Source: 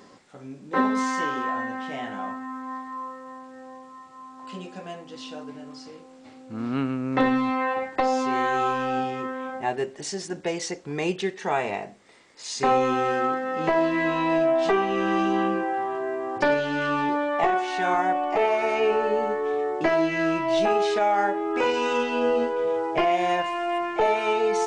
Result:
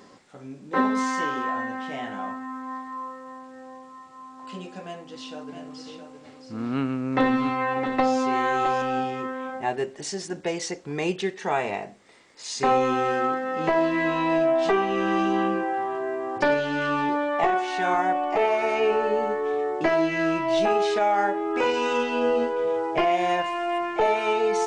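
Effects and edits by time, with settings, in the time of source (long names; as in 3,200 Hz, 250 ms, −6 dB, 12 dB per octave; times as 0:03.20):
0:04.85–0:08.82: single-tap delay 664 ms −7.5 dB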